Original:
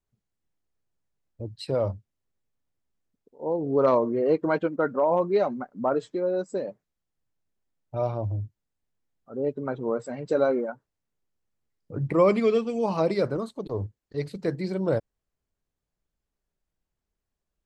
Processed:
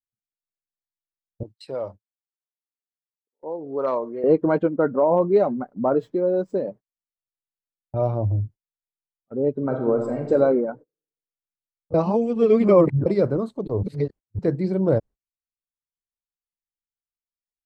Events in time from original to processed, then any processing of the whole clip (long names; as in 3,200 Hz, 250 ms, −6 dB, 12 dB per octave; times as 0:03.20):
0:01.43–0:04.24: high-pass filter 1,200 Hz 6 dB per octave
0:05.36–0:06.54: running median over 5 samples
0:09.55–0:10.32: thrown reverb, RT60 1 s, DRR 3 dB
0:11.94–0:13.06: reverse
0:13.83–0:14.39: reverse
whole clip: noise gate −44 dBFS, range −31 dB; tilt shelving filter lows +7 dB, about 1,200 Hz